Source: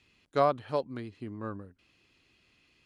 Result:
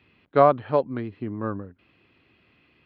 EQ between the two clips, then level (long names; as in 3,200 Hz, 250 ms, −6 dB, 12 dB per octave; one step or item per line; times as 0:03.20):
Gaussian smoothing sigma 2.9 samples
high-pass filter 74 Hz
+9.0 dB